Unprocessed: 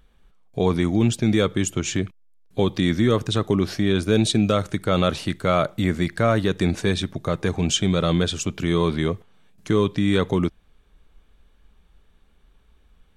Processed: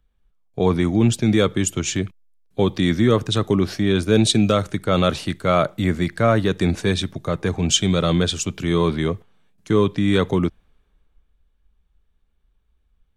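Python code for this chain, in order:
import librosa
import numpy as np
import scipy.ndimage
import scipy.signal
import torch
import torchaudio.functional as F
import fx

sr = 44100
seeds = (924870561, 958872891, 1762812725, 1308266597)

y = fx.band_widen(x, sr, depth_pct=40)
y = y * 10.0 ** (2.0 / 20.0)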